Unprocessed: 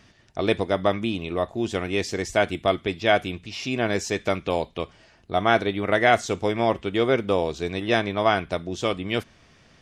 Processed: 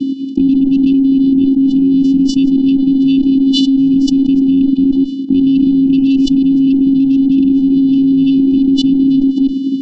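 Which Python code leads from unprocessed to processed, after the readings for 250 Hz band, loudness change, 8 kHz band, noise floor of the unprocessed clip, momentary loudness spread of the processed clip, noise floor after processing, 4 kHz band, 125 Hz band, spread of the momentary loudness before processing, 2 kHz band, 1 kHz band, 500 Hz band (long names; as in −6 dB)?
+22.0 dB, +13.0 dB, can't be measured, −56 dBFS, 2 LU, −19 dBFS, +6.5 dB, +4.5 dB, 8 LU, below −15 dB, below −20 dB, −8.0 dB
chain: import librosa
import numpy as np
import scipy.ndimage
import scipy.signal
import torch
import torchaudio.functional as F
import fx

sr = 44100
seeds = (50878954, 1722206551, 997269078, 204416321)

y = fx.reverse_delay(x, sr, ms=169, wet_db=-7)
y = fx.curve_eq(y, sr, hz=(130.0, 300.0, 500.0, 760.0), db=(0, 4, 13, -1))
y = fx.vocoder(y, sr, bands=8, carrier='square', carrier_hz=270.0)
y = fx.cheby_harmonics(y, sr, harmonics=(4, 7), levels_db=(-25, -27), full_scale_db=-7.0)
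y = fx.brickwall_bandstop(y, sr, low_hz=380.0, high_hz=2500.0)
y = fx.air_absorb(y, sr, metres=210.0)
y = fx.tremolo_shape(y, sr, shape='triangle', hz=11.0, depth_pct=30)
y = fx.env_flatten(y, sr, amount_pct=100)
y = F.gain(torch.from_numpy(y), 1.0).numpy()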